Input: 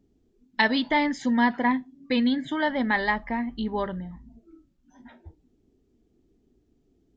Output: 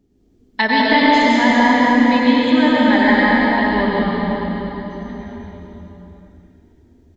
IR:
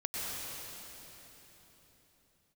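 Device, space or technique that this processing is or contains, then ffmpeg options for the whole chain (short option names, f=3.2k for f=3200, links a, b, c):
cave: -filter_complex "[0:a]aecho=1:1:211:0.398[a];[1:a]atrim=start_sample=2205[b];[a][b]afir=irnorm=-1:irlink=0,volume=6dB"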